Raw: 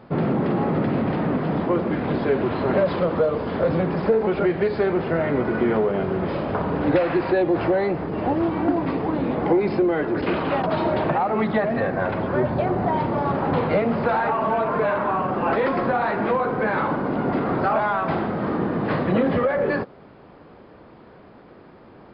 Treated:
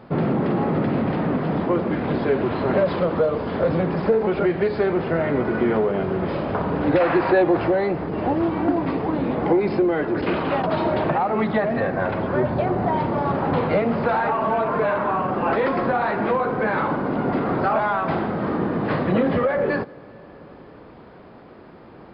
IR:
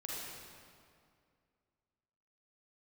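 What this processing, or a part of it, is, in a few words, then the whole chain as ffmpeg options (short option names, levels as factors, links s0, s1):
compressed reverb return: -filter_complex "[0:a]asplit=2[s0][s1];[1:a]atrim=start_sample=2205[s2];[s1][s2]afir=irnorm=-1:irlink=0,acompressor=threshold=0.0178:ratio=4,volume=0.447[s3];[s0][s3]amix=inputs=2:normalize=0,asettb=1/sr,asplit=3[s4][s5][s6];[s4]atrim=end=7.004[s7];[s5]atrim=start=7:end=7.57,asetpts=PTS-STARTPTS,afade=t=in:d=0.004:c=qsin,afade=t=out:st=0.566:d=0.004:c=qsin,equalizer=f=1100:w=0.6:g=6[s8];[s6]atrim=start=7.566[s9];[s7][s8]acrossfade=d=0.004:c1=hsin:c2=qsin[s10];[s10][s9]acrossfade=d=0.004:c1=qsin:c2=hsin"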